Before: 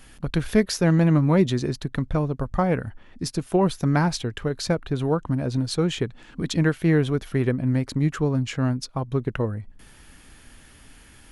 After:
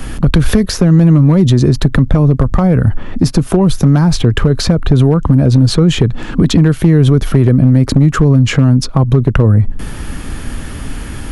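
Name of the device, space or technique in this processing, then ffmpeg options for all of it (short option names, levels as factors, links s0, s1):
mastering chain: -filter_complex "[0:a]equalizer=f=1200:t=o:w=0.42:g=4,acrossover=split=150|3600[s0][s1][s2];[s0]acompressor=threshold=0.0316:ratio=4[s3];[s1]acompressor=threshold=0.0398:ratio=4[s4];[s2]acompressor=threshold=0.0126:ratio=4[s5];[s3][s4][s5]amix=inputs=3:normalize=0,acompressor=threshold=0.0316:ratio=2,asoftclip=type=tanh:threshold=0.1,tiltshelf=f=690:g=5.5,asoftclip=type=hard:threshold=0.0944,alimiter=level_in=15.8:limit=0.891:release=50:level=0:latency=1,volume=0.891"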